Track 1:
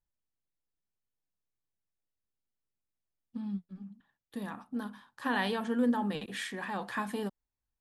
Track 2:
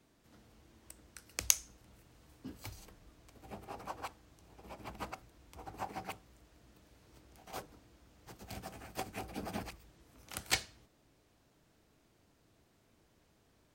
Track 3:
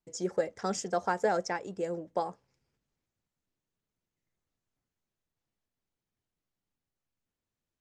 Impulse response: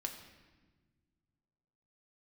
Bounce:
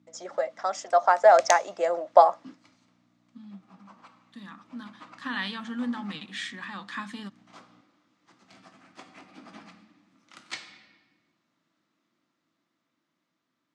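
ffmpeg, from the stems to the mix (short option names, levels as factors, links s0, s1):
-filter_complex "[0:a]equalizer=f=590:w=0.37:g=-13,aeval=exprs='val(0)+0.00141*(sin(2*PI*60*n/s)+sin(2*PI*2*60*n/s)/2+sin(2*PI*3*60*n/s)/3+sin(2*PI*4*60*n/s)/4+sin(2*PI*5*60*n/s)/5)':c=same,volume=1.12,asplit=2[s0][s1];[s1]volume=0.1[s2];[1:a]volume=1.26,asplit=2[s3][s4];[s4]volume=0.282[s5];[2:a]dynaudnorm=f=240:g=11:m=4.47,highpass=f=660:t=q:w=6.8,volume=1,asplit=2[s6][s7];[s7]apad=whole_len=606019[s8];[s3][s8]sidechaingate=range=0.0224:threshold=0.00562:ratio=16:detection=peak[s9];[3:a]atrim=start_sample=2205[s10];[s2][s5]amix=inputs=2:normalize=0[s11];[s11][s10]afir=irnorm=-1:irlink=0[s12];[s0][s9][s6][s12]amix=inputs=4:normalize=0,dynaudnorm=f=530:g=7:m=1.41,highpass=f=160:w=0.5412,highpass=f=160:w=1.3066,equalizer=f=270:t=q:w=4:g=4,equalizer=f=430:t=q:w=4:g=-9,equalizer=f=710:t=q:w=4:g=-4,equalizer=f=1200:t=q:w=4:g=9,equalizer=f=2000:t=q:w=4:g=5,equalizer=f=3600:t=q:w=4:g=4,lowpass=f=7100:w=0.5412,lowpass=f=7100:w=1.3066"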